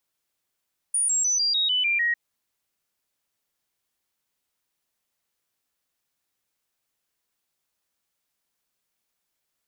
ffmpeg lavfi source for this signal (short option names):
-f lavfi -i "aevalsrc='0.1*clip(min(mod(t,0.15),0.15-mod(t,0.15))/0.005,0,1)*sin(2*PI*9520*pow(2,-floor(t/0.15)/3)*mod(t,0.15))':d=1.2:s=44100"